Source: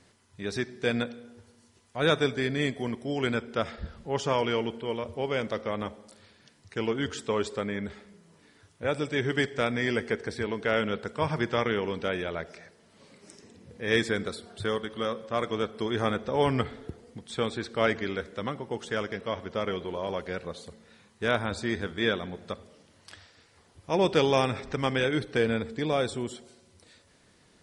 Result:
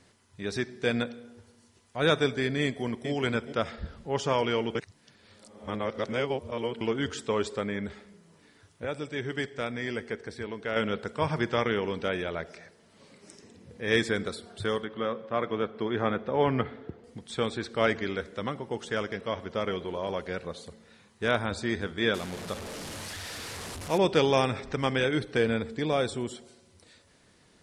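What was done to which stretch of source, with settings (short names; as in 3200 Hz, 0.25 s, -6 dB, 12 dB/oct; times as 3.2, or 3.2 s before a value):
2.62–3.1 echo throw 0.42 s, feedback 15%, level -9 dB
4.75–6.81 reverse
8.85–10.76 gain -5.5 dB
14.84–17.04 BPF 100–2700 Hz
22.14–23.98 delta modulation 64 kbps, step -33 dBFS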